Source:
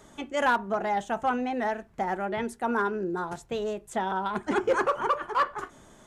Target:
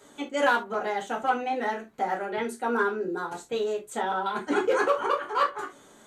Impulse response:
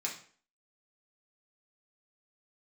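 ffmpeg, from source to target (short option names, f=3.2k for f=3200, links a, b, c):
-filter_complex "[1:a]atrim=start_sample=2205,afade=t=out:st=0.2:d=0.01,atrim=end_sample=9261,asetrate=79380,aresample=44100[a];[0:a][a]afir=irnorm=-1:irlink=0,volume=5.5dB"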